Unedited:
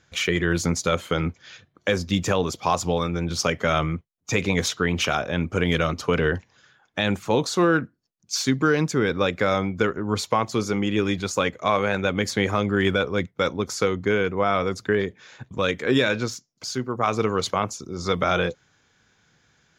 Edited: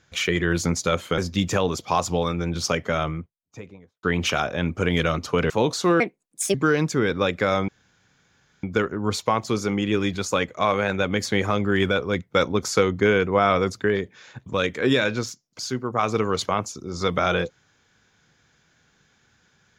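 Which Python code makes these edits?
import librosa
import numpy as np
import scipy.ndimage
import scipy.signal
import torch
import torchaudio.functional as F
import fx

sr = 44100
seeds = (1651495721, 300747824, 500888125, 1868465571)

y = fx.studio_fade_out(x, sr, start_s=3.3, length_s=1.48)
y = fx.edit(y, sr, fx.cut(start_s=1.18, length_s=0.75),
    fx.cut(start_s=6.25, length_s=0.98),
    fx.speed_span(start_s=7.73, length_s=0.81, speed=1.49),
    fx.insert_room_tone(at_s=9.68, length_s=0.95),
    fx.clip_gain(start_s=13.31, length_s=1.46, db=3.0), tone=tone)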